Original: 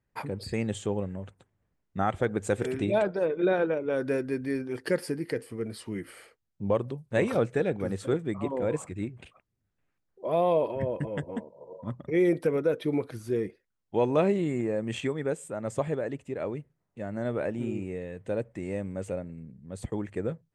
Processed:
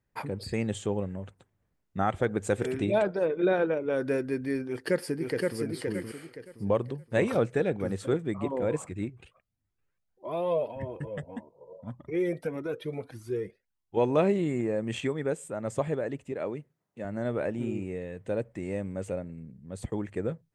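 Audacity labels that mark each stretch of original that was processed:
4.680000	5.590000	delay throw 520 ms, feedback 30%, level −2.5 dB
9.100000	13.970000	flanger whose copies keep moving one way rising 1.7 Hz
16.320000	17.050000	Bessel high-pass filter 150 Hz

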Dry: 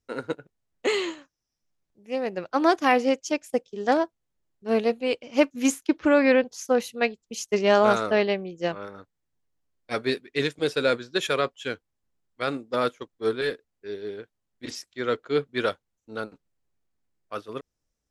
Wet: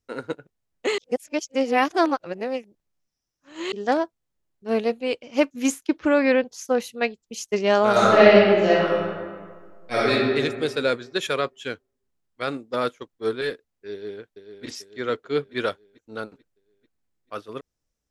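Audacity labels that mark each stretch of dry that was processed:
0.980000	3.720000	reverse
7.910000	10.100000	thrown reverb, RT60 1.7 s, DRR −9.5 dB
13.920000	14.660000	delay throw 440 ms, feedback 55%, level −9 dB

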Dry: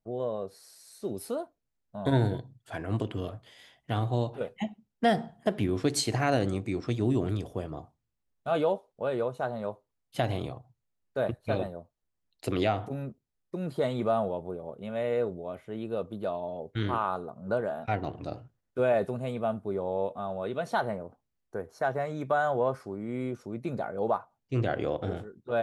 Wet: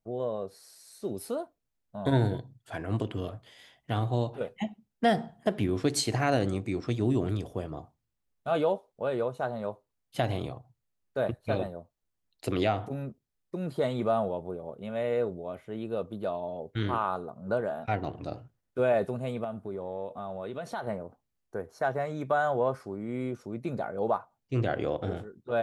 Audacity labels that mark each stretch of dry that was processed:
19.440000	20.870000	downward compressor 2.5 to 1, threshold −34 dBFS

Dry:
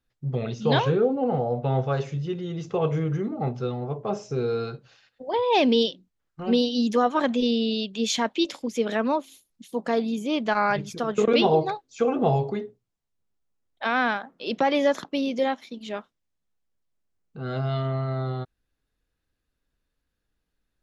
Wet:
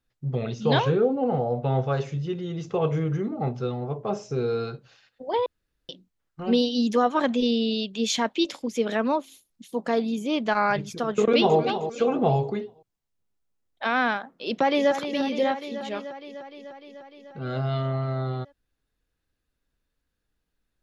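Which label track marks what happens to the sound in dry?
5.460000	5.890000	fill with room tone
11.180000	11.580000	delay throw 310 ms, feedback 35%, level −10 dB
14.350000	14.920000	delay throw 300 ms, feedback 75%, level −9 dB

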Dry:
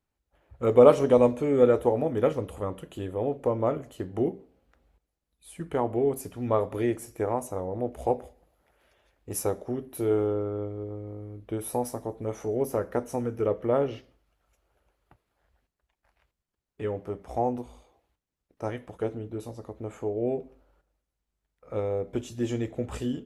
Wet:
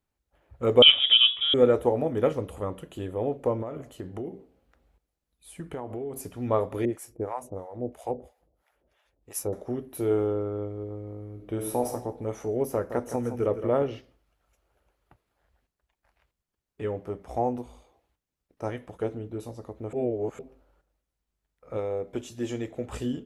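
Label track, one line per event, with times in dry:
0.820000	1.540000	voice inversion scrambler carrier 3,600 Hz
3.620000	6.240000	downward compressor, threshold −31 dBFS
6.850000	9.530000	two-band tremolo in antiphase 3 Hz, depth 100%, crossover 640 Hz
11.320000	11.910000	thrown reverb, RT60 0.97 s, DRR 3.5 dB
12.730000	13.830000	repeating echo 165 ms, feedback 31%, level −10 dB
19.930000	20.390000	reverse
21.770000	22.930000	low-shelf EQ 220 Hz −7 dB

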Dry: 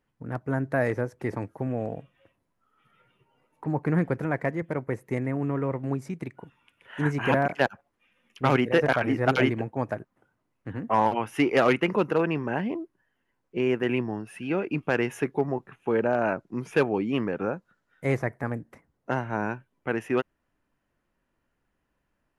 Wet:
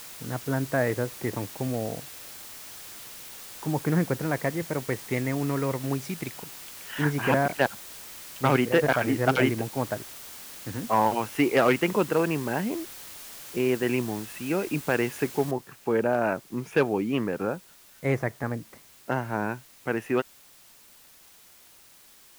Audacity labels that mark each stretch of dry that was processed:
4.880000	7.050000	parametric band 4,100 Hz +10.5 dB 2.1 octaves
15.510000	15.510000	noise floor change −43 dB −54 dB

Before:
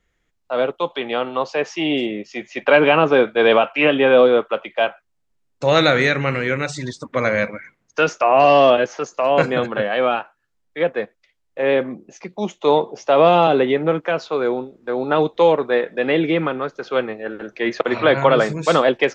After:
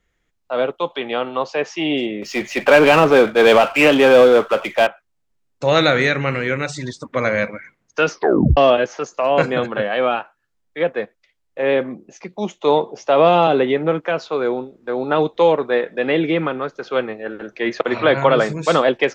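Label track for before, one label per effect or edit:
2.220000	4.870000	power curve on the samples exponent 0.7
8.100000	8.100000	tape stop 0.47 s

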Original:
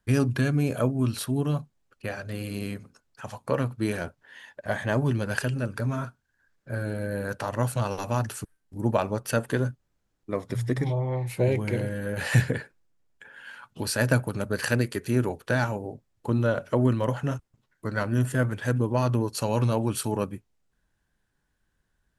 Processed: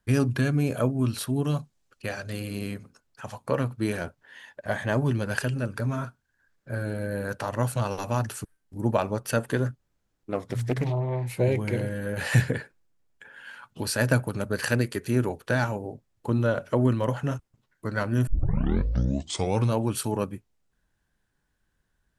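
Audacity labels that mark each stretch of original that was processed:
1.440000	2.400000	parametric band 6,200 Hz +6.5 dB 2 octaves
9.660000	11.280000	highs frequency-modulated by the lows depth 0.42 ms
18.270000	18.270000	tape start 1.40 s

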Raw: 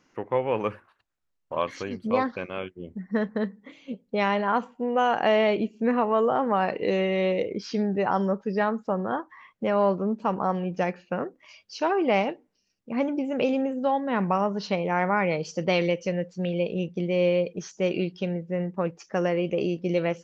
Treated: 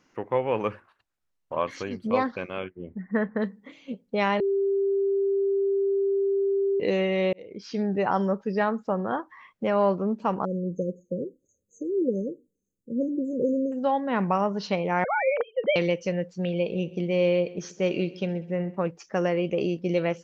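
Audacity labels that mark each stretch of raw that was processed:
0.680000	1.660000	treble cut that deepens with the level closes to 2,500 Hz, closed at −27 dBFS
2.640000	3.420000	high shelf with overshoot 2,900 Hz −12.5 dB, Q 1.5
4.400000	6.800000	beep over 394 Hz −21 dBFS
7.330000	7.900000	fade in
10.450000	13.720000	linear-phase brick-wall band-stop 570–6,200 Hz
15.040000	15.760000	three sine waves on the formant tracks
16.490000	18.860000	echo machine with several playback heads 65 ms, heads first and second, feedback 41%, level −21 dB

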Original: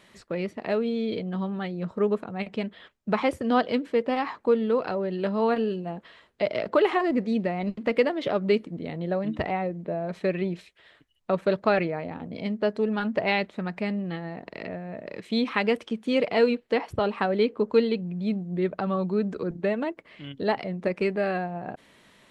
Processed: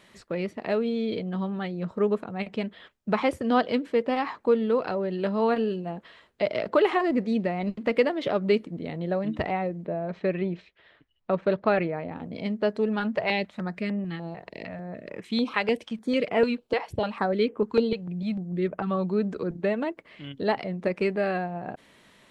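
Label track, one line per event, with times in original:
9.870000	12.160000	high-frequency loss of the air 180 metres
13.150000	18.910000	notch on a step sequencer 6.7 Hz 260–4,200 Hz

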